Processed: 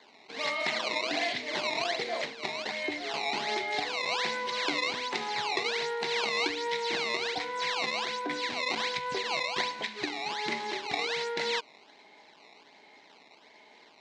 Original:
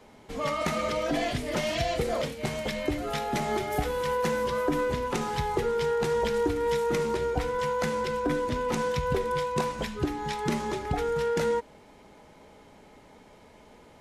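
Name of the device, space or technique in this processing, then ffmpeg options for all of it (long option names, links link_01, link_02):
circuit-bent sampling toy: -af "acrusher=samples=16:mix=1:aa=0.000001:lfo=1:lforange=25.6:lforate=1.3,highpass=450,equalizer=frequency=520:width_type=q:width=4:gain=-9,equalizer=frequency=1300:width_type=q:width=4:gain=-9,equalizer=frequency=2100:width_type=q:width=4:gain=8,equalizer=frequency=4000:width_type=q:width=4:gain=9,lowpass=frequency=5900:width=0.5412,lowpass=frequency=5900:width=1.3066"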